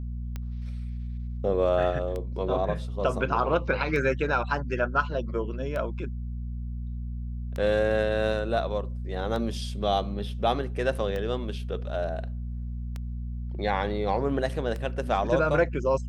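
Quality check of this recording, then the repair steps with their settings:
hum 60 Hz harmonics 4 -33 dBFS
tick 33 1/3 rpm -21 dBFS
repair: de-click; de-hum 60 Hz, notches 4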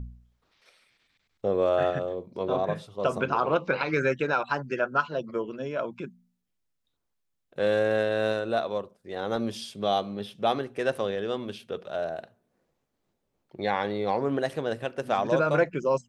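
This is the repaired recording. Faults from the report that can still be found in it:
nothing left

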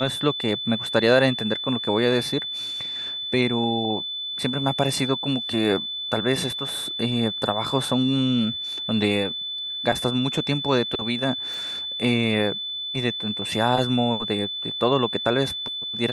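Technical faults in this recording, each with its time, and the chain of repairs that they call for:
whine 3.5 kHz -28 dBFS
11.54 s: pop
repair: de-click; band-stop 3.5 kHz, Q 30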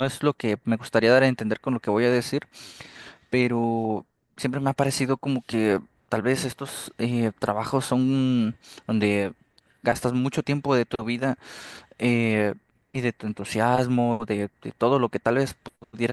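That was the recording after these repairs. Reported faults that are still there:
nothing left

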